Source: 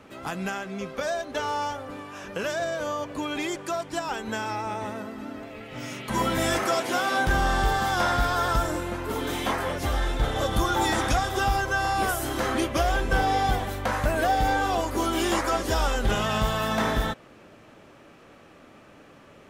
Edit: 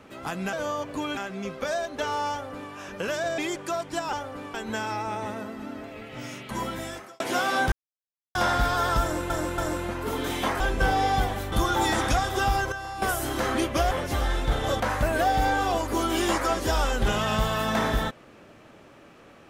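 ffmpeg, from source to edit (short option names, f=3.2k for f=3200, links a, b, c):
-filter_complex "[0:a]asplit=17[a][b][c][d][e][f][g][h][i][j][k][l][m][n][o][p][q];[a]atrim=end=0.532[r];[b]atrim=start=2.738:end=3.382[s];[c]atrim=start=0.528:end=2.742[t];[d]atrim=start=3.378:end=4.132[u];[e]atrim=start=1.668:end=2.082[v];[f]atrim=start=4.128:end=6.79,asetpts=PTS-STARTPTS,afade=t=out:st=1.522:d=1.14[w];[g]atrim=start=6.79:end=7.31,asetpts=PTS-STARTPTS,afade=t=in:d=0.004:c=hsin,afade=t=out:st=0.516:d=0.004:c=hsin[x];[h]atrim=start=7.31:end=7.94,asetpts=PTS-STARTPTS,volume=0[y];[i]atrim=start=7.94:end=8.892,asetpts=PTS-STARTPTS,afade=t=in:d=0.004:c=hsin[z];[j]atrim=start=8.608:end=8.892[aa];[k]atrim=start=8.608:end=9.632[ab];[l]atrim=start=12.908:end=13.832[ac];[m]atrim=start=10.518:end=11.722[ad];[n]atrim=start=11.718:end=12.022,asetpts=PTS-STARTPTS,volume=-10dB[ae];[o]atrim=start=12.018:end=12.912[af];[p]atrim=start=9.628:end=10.522[ag];[q]atrim=start=13.828[ah];[r][s]acrossfade=d=0.004:c1=hsin:c2=hsin[ai];[ai][t]acrossfade=d=0.004:c1=hsin:c2=hsin[aj];[aj][u]acrossfade=d=0.004:c1=hsin:c2=hsin[ak];[ak][v]acrossfade=d=0.004:c1=hsin:c2=hsin[al];[w][x][y][z]concat=n=4:v=0:a=1[am];[al][am]acrossfade=d=0.004:c1=hsin:c2=hsin[an];[an][aa]acrossfade=d=0.004:c1=hsin:c2=hsin[ao];[ao][ab]acrossfade=d=0.004:c1=hsin:c2=hsin[ap];[ap][ac]acrossfade=d=0.004:c1=hsin:c2=hsin[aq];[aq][ad]acrossfade=d=0.004:c1=hsin:c2=hsin[ar];[ar][ae]acrossfade=d=0.004:c1=hsin:c2=hsin[as];[as][af]acrossfade=d=0.004:c1=hsin:c2=hsin[at];[at][ag]acrossfade=d=0.004:c1=hsin:c2=hsin[au];[au][ah]acrossfade=d=0.004:c1=hsin:c2=hsin"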